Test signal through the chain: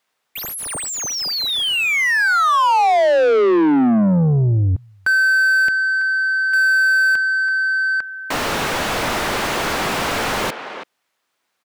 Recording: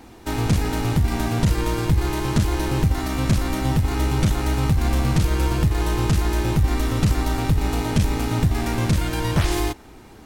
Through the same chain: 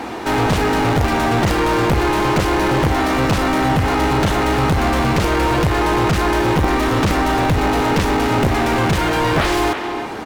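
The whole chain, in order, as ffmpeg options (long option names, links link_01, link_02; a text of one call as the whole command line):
ffmpeg -i in.wav -filter_complex "[0:a]aeval=exprs='(mod(3.16*val(0)+1,2)-1)/3.16':channel_layout=same,asplit=2[link_01][link_02];[link_02]adelay=330,highpass=300,lowpass=3400,asoftclip=type=hard:threshold=-19.5dB,volume=-17dB[link_03];[link_01][link_03]amix=inputs=2:normalize=0,asplit=2[link_04][link_05];[link_05]highpass=frequency=720:poles=1,volume=30dB,asoftclip=type=tanh:threshold=-9.5dB[link_06];[link_04][link_06]amix=inputs=2:normalize=0,lowpass=frequency=1500:poles=1,volume=-6dB,volume=1.5dB" out.wav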